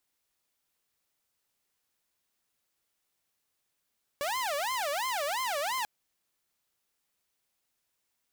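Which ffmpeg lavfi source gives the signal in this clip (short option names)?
-f lavfi -i "aevalsrc='0.0447*(2*mod((807.5*t-242.5/(2*PI*2.9)*sin(2*PI*2.9*t)),1)-1)':d=1.64:s=44100"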